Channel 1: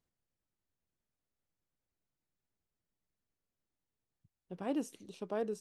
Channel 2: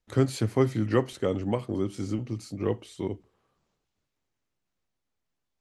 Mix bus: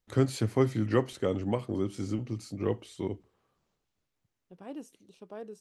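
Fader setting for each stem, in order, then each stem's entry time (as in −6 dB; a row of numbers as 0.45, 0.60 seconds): −6.5, −2.0 decibels; 0.00, 0.00 seconds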